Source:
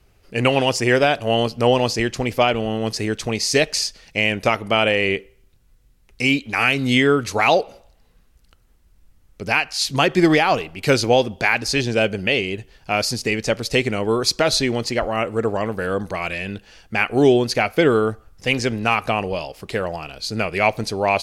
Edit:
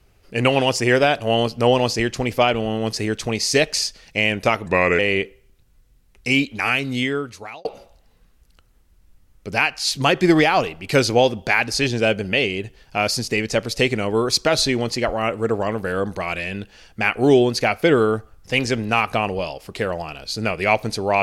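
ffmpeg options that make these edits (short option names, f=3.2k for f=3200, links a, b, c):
-filter_complex "[0:a]asplit=4[a][b][c][d];[a]atrim=end=4.664[e];[b]atrim=start=4.66:end=4.93,asetpts=PTS-STARTPTS,asetrate=36162,aresample=44100[f];[c]atrim=start=4.926:end=7.59,asetpts=PTS-STARTPTS,afade=t=out:st=1.444:d=1.22[g];[d]atrim=start=7.59,asetpts=PTS-STARTPTS,afade=t=in:d=0.004:c=hsin[h];[e][f]acrossfade=d=0.004:c1=hsin:c2=hsin[i];[g][h]concat=n=2:v=0:a=1[j];[i][j]acrossfade=d=0.004:c1=hsin:c2=hsin"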